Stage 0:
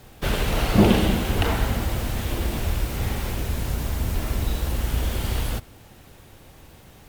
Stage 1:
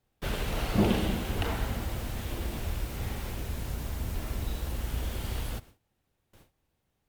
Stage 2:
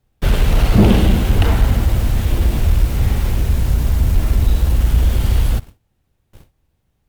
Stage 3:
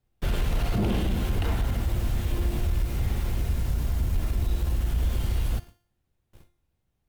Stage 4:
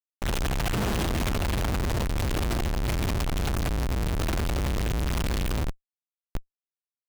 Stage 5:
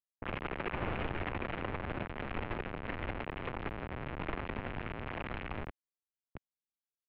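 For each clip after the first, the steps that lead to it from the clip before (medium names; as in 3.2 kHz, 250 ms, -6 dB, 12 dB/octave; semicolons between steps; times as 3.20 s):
gate with hold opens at -35 dBFS; trim -8.5 dB
bass shelf 160 Hz +11 dB; waveshaping leveller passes 1; trim +7 dB
peak limiter -8 dBFS, peak gain reduction 6.5 dB; feedback comb 350 Hz, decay 0.53 s, mix 70%
Schmitt trigger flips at -45.5 dBFS
level-controlled noise filter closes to 340 Hz, open at -24.5 dBFS; mistuned SSB -330 Hz 290–3000 Hz; trim -4 dB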